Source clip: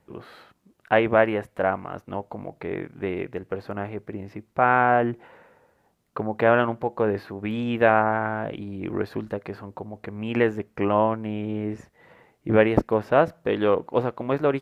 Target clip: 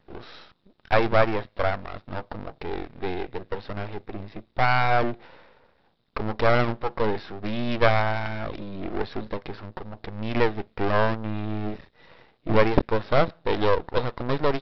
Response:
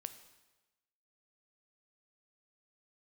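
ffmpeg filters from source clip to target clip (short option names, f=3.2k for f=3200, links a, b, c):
-af "equalizer=f=3.7k:t=o:w=0.21:g=13.5,aresample=11025,aeval=exprs='max(val(0),0)':c=same,aresample=44100,volume=4.5dB"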